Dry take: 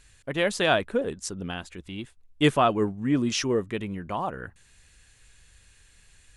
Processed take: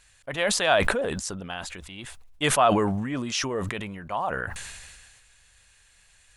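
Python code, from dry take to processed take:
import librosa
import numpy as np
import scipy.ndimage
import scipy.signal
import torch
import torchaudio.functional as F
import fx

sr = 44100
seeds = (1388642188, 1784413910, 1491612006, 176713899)

y = fx.low_shelf_res(x, sr, hz=490.0, db=-7.0, q=1.5)
y = fx.sustainer(y, sr, db_per_s=32.0)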